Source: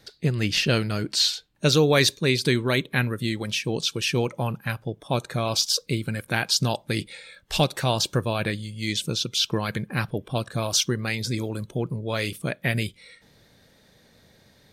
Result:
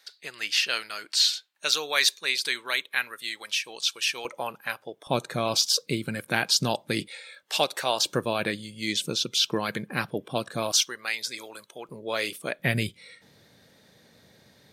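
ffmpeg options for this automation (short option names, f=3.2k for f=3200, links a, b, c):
-af "asetnsamples=n=441:p=0,asendcmd='4.25 highpass f 530;5.07 highpass f 170;7.08 highpass f 480;8.06 highpass f 210;10.72 highpass f 850;11.89 highpass f 370;12.59 highpass f 100',highpass=1.1k"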